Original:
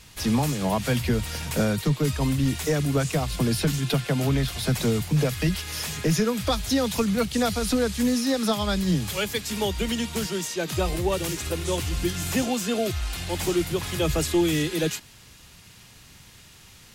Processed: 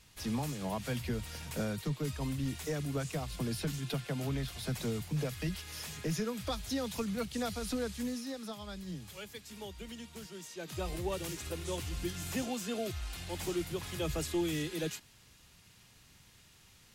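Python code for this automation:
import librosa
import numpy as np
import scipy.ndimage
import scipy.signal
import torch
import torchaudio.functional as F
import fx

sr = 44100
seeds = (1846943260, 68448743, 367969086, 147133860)

y = fx.gain(x, sr, db=fx.line((7.9, -12.0), (8.49, -19.0), (10.3, -19.0), (10.94, -11.0)))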